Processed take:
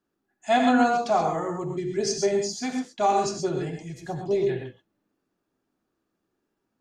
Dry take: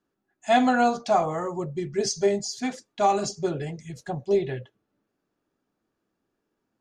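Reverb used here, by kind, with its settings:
reverb whose tail is shaped and stops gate 150 ms rising, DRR 4 dB
level −1.5 dB

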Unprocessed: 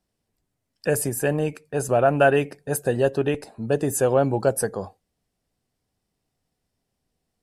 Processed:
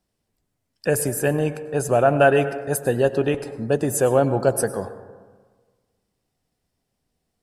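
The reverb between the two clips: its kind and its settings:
dense smooth reverb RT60 1.5 s, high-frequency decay 0.3×, pre-delay 85 ms, DRR 12 dB
level +1.5 dB

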